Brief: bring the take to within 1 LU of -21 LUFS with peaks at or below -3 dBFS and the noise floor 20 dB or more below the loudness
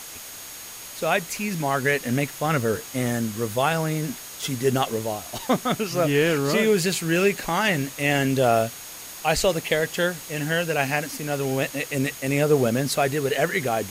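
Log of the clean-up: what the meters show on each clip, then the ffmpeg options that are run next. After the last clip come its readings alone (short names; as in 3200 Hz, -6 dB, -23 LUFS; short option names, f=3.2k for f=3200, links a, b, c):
steady tone 6600 Hz; tone level -44 dBFS; noise floor -39 dBFS; noise floor target -44 dBFS; loudness -23.5 LUFS; peak -8.0 dBFS; loudness target -21.0 LUFS
-> -af "bandreject=f=6.6k:w=30"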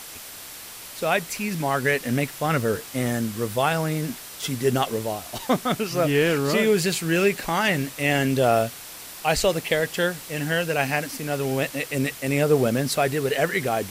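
steady tone none; noise floor -40 dBFS; noise floor target -44 dBFS
-> -af "afftdn=nr=6:nf=-40"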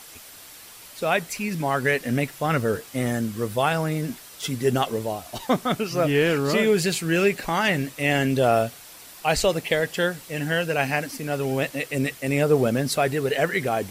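noise floor -45 dBFS; loudness -24.0 LUFS; peak -8.0 dBFS; loudness target -21.0 LUFS
-> -af "volume=3dB"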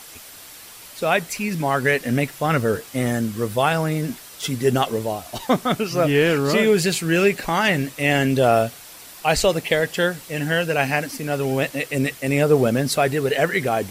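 loudness -21.0 LUFS; peak -5.0 dBFS; noise floor -42 dBFS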